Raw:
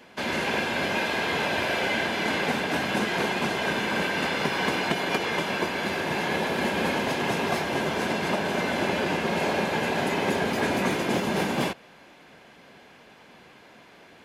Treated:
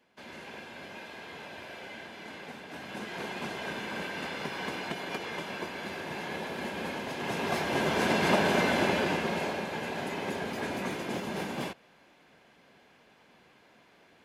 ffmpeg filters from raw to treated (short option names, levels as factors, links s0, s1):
-af "volume=1.26,afade=t=in:st=2.65:d=0.78:silence=0.398107,afade=t=in:st=7.12:d=1.27:silence=0.251189,afade=t=out:st=8.39:d=1.21:silence=0.281838"